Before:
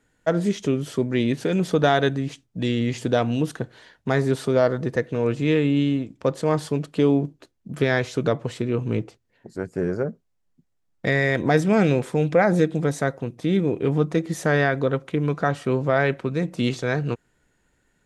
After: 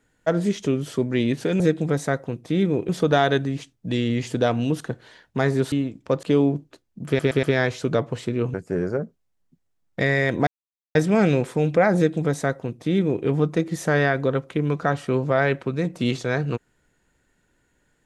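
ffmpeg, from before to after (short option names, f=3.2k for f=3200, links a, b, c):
-filter_complex "[0:a]asplit=10[a][b][c][d][e][f][g][h][i][j];[a]atrim=end=1.602[k];[b]atrim=start=12.538:end=13.832[l];[c]atrim=start=1.598:end=4.432[m];[d]atrim=start=5.868:end=6.382[n];[e]atrim=start=6.918:end=7.882[o];[f]atrim=start=7.758:end=7.882[p];[g]atrim=start=7.758:end=7.882[q];[h]atrim=start=7.758:end=8.872[r];[i]atrim=start=9.598:end=11.53,asetpts=PTS-STARTPTS,afade=t=out:st=1.928:d=0.004:c=hsin,apad=pad_dur=0.48[s];[j]atrim=start=11.53,asetpts=PTS-STARTPTS,afade=t=in:d=0.004:c=hsin[t];[k][l]acrossfade=d=0.004:c1=hsin:c2=hsin[u];[u][m]acrossfade=d=0.004:c1=hsin:c2=hsin[v];[v][n]acrossfade=d=0.004:c1=hsin:c2=hsin[w];[w][o]acrossfade=d=0.004:c1=hsin:c2=hsin[x];[x][p]acrossfade=d=0.004:c1=hsin:c2=hsin[y];[y][q]acrossfade=d=0.004:c1=hsin:c2=hsin[z];[z][r]acrossfade=d=0.004:c1=hsin:c2=hsin[aa];[s][t]concat=n=2:v=0:a=1[ab];[aa][ab]acrossfade=d=0.004:c1=hsin:c2=hsin"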